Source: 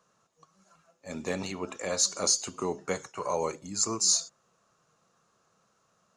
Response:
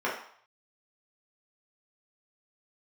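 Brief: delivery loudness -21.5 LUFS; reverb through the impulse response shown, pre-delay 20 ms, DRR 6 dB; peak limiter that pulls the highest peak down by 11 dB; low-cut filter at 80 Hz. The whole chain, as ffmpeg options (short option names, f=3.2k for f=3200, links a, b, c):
-filter_complex "[0:a]highpass=80,alimiter=limit=-22dB:level=0:latency=1,asplit=2[a][b];[1:a]atrim=start_sample=2205,adelay=20[c];[b][c]afir=irnorm=-1:irlink=0,volume=-17dB[d];[a][d]amix=inputs=2:normalize=0,volume=11.5dB"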